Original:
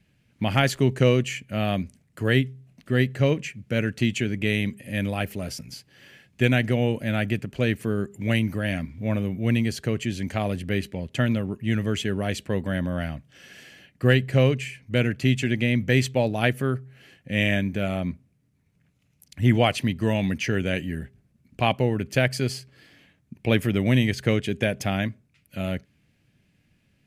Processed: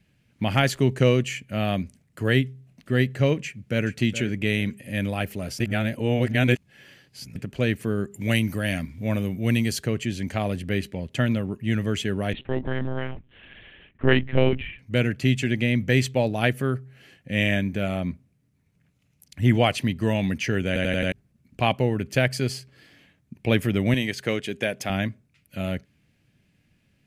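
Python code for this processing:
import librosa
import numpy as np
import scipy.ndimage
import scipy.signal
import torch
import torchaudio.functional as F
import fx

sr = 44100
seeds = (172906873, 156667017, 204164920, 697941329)

y = fx.echo_throw(x, sr, start_s=3.44, length_s=0.43, ms=420, feedback_pct=25, wet_db=-12.0)
y = fx.high_shelf(y, sr, hz=4300.0, db=9.0, at=(8.14, 9.84))
y = fx.lpc_monotone(y, sr, seeds[0], pitch_hz=130.0, order=10, at=(12.33, 14.79))
y = fx.highpass(y, sr, hz=340.0, slope=6, at=(23.94, 24.9))
y = fx.edit(y, sr, fx.reverse_span(start_s=5.6, length_s=1.76),
    fx.stutter_over(start_s=20.67, slice_s=0.09, count=5), tone=tone)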